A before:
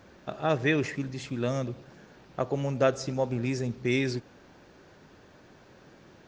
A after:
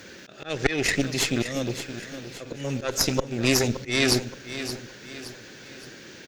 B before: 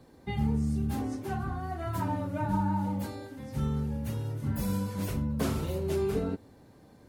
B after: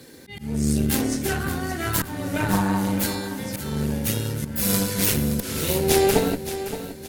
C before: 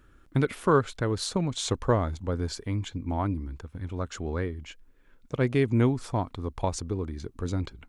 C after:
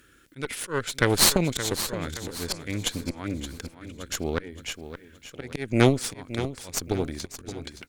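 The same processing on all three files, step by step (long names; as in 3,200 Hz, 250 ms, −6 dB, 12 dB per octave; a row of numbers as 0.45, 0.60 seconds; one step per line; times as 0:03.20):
high-pass filter 56 Hz 6 dB per octave
spectral tilt +2.5 dB per octave
volume swells 298 ms
flat-topped bell 880 Hz −10 dB 1.2 octaves
harmonic generator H 6 −9 dB, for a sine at −10 dBFS
on a send: repeating echo 571 ms, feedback 42%, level −11.5 dB
on the sum: normalise the peak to −2 dBFS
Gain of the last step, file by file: +12.0, +14.0, +6.5 decibels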